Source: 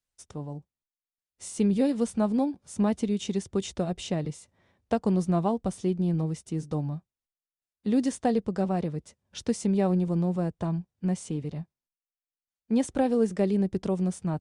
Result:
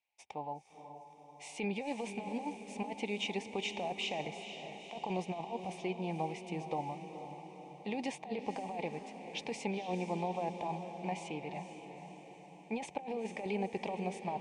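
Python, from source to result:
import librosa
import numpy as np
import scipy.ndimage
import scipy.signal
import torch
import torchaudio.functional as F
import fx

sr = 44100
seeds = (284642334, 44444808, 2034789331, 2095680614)

y = fx.double_bandpass(x, sr, hz=1400.0, octaves=1.5)
y = fx.over_compress(y, sr, threshold_db=-47.0, ratio=-1.0)
y = fx.echo_diffused(y, sr, ms=473, feedback_pct=59, wet_db=-9.0)
y = F.gain(torch.from_numpy(y), 9.5).numpy()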